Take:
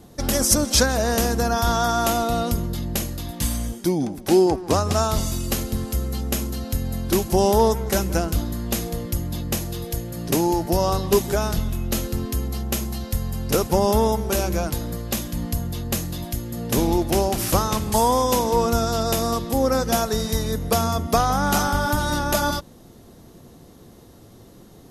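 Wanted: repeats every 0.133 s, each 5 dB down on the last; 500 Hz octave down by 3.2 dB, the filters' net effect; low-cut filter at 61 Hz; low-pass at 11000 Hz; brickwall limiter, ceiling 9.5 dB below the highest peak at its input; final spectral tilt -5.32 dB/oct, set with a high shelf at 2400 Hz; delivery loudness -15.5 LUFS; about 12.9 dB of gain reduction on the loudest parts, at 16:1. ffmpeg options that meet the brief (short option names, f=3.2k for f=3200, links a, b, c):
-af "highpass=61,lowpass=11k,equalizer=f=500:t=o:g=-4,highshelf=f=2.4k:g=-4.5,acompressor=threshold=-28dB:ratio=16,alimiter=level_in=3dB:limit=-24dB:level=0:latency=1,volume=-3dB,aecho=1:1:133|266|399|532|665|798|931:0.562|0.315|0.176|0.0988|0.0553|0.031|0.0173,volume=19dB"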